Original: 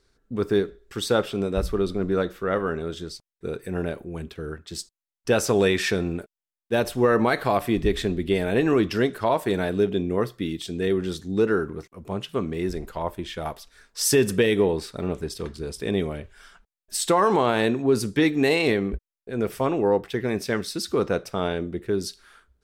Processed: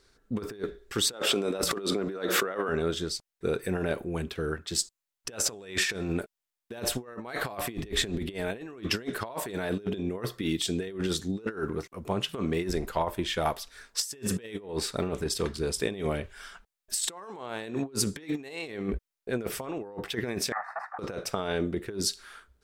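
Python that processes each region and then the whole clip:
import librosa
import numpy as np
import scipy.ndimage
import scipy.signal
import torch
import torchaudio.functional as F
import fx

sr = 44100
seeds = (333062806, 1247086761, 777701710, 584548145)

y = fx.chain(x, sr, fx.highpass(hz=250.0, slope=12),
    fx.pre_swell(db_per_s=39.0), at=(1.13, 2.69))
y = fx.chain(y, sr, fx.lower_of_two(delay_ms=1.6),
    fx.ellip_bandpass(low_hz=740.0, high_hz=1800.0, order=3, stop_db=40),
    fx.over_compress(threshold_db=-35.0, ratio=-0.5), at=(20.52, 20.99))
y = fx.dynamic_eq(y, sr, hz=7400.0, q=3.6, threshold_db=-51.0, ratio=4.0, max_db=5)
y = fx.over_compress(y, sr, threshold_db=-28.0, ratio=-0.5)
y = fx.low_shelf(y, sr, hz=410.0, db=-5.0)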